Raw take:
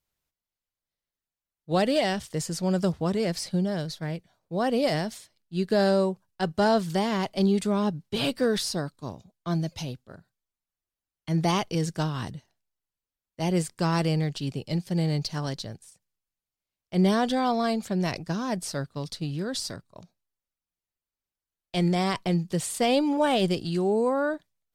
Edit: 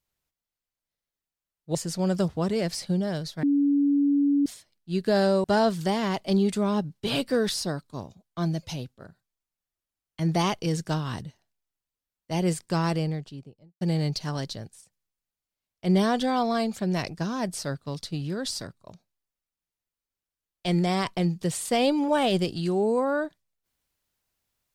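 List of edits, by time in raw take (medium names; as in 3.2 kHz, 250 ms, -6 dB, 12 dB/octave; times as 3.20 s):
1.75–2.39 s: delete
4.07–5.10 s: bleep 284 Hz -18.5 dBFS
6.08–6.53 s: delete
13.77–14.90 s: studio fade out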